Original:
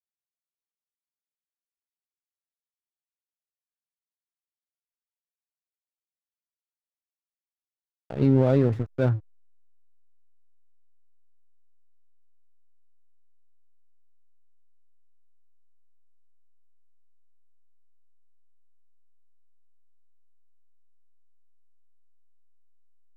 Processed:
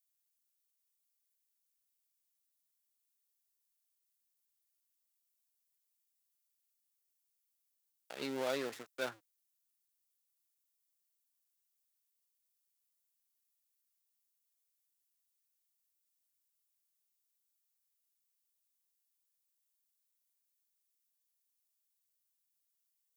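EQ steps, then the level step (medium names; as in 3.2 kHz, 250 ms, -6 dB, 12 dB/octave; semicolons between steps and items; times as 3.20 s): high-pass 150 Hz 24 dB/octave; differentiator; bass shelf 190 Hz -9.5 dB; +10.5 dB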